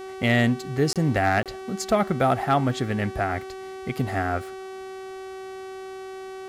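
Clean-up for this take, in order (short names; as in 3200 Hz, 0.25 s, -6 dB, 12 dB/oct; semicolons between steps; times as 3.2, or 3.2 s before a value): clip repair -12 dBFS; de-hum 380.5 Hz, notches 33; interpolate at 0.93/1.43, 27 ms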